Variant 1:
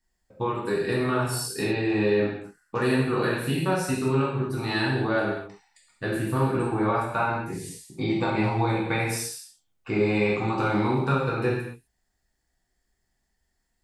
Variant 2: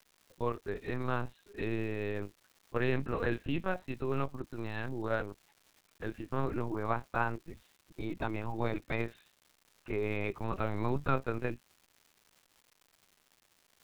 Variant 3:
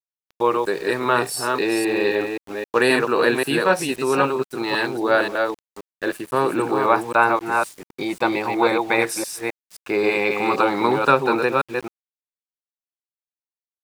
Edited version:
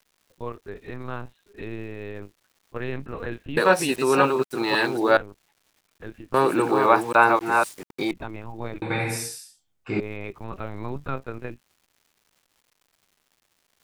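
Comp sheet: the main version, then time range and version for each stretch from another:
2
3.57–5.17 from 3
6.34–8.11 from 3
8.82–10 from 1

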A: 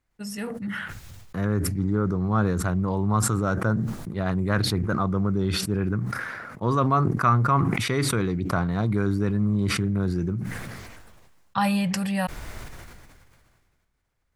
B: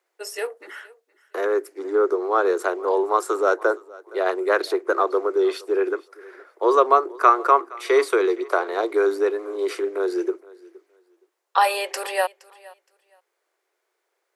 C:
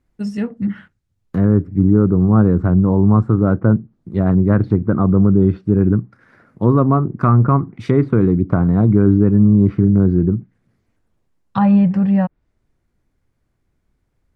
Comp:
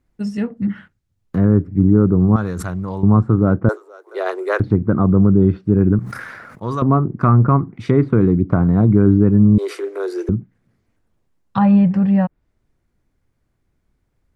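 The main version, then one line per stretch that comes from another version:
C
2.36–3.03 from A
3.69–4.6 from B
5.99–6.82 from A
9.58–10.29 from B

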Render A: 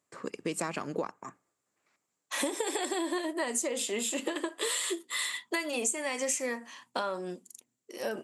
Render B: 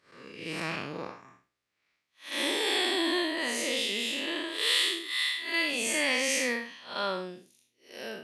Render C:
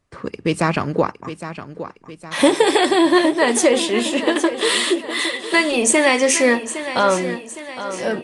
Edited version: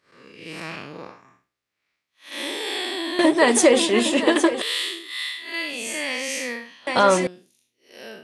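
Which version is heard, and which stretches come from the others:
B
3.19–4.62 from C
6.87–7.27 from C
not used: A

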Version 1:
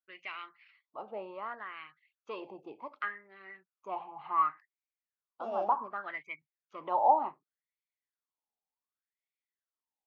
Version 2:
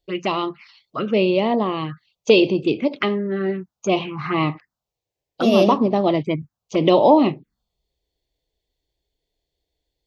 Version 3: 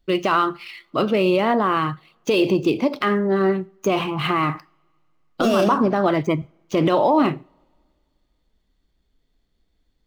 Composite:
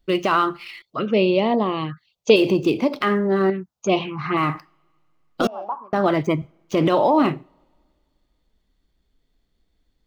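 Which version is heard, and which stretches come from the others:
3
0.82–2.36 from 2
3.5–4.37 from 2
5.47–5.93 from 1

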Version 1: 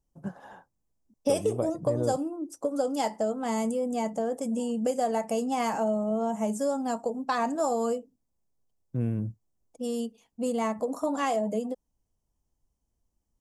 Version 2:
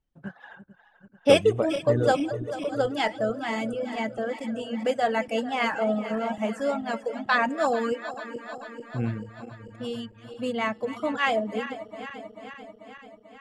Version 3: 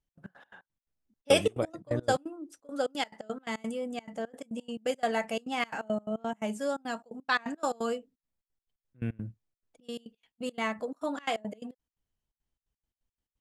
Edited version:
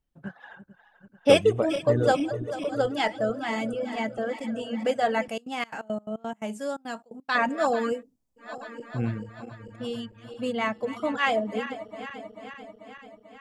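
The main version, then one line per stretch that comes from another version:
2
5.29–7.35 from 3
7.95–8.44 from 1, crossfade 0.16 s

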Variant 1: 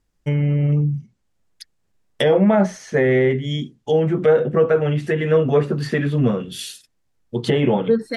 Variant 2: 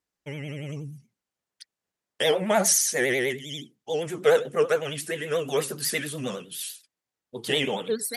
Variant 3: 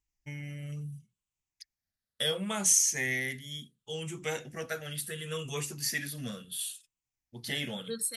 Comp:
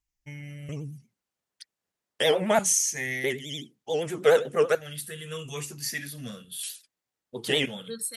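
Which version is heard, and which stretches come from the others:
3
0.69–2.59 from 2
3.24–4.75 from 2
6.63–7.66 from 2
not used: 1

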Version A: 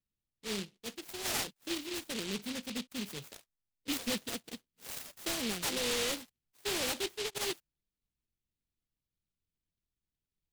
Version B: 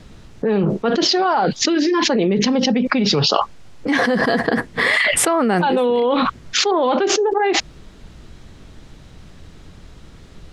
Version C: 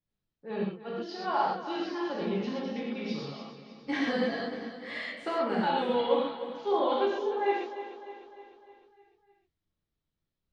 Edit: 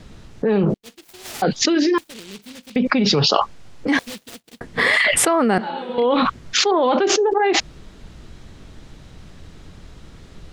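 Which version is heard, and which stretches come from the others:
B
0.74–1.42 from A
1.98–2.76 from A
3.99–4.61 from A
5.58–5.98 from C

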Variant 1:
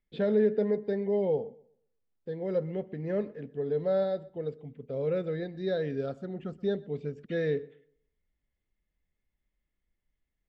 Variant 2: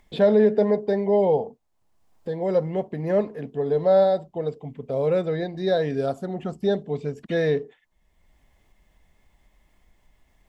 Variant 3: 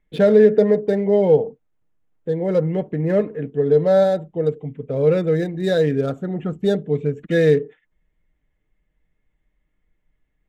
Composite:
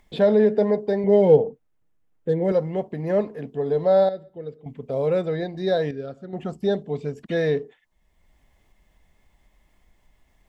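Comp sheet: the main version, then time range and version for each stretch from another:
2
1.04–2.52 from 3
4.09–4.66 from 1
5.91–6.33 from 1

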